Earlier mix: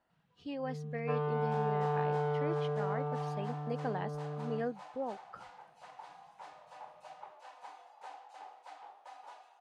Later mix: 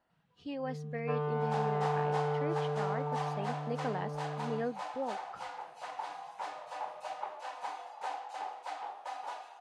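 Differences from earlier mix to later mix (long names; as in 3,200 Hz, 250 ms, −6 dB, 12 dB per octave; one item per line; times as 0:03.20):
second sound +8.0 dB
reverb: on, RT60 0.55 s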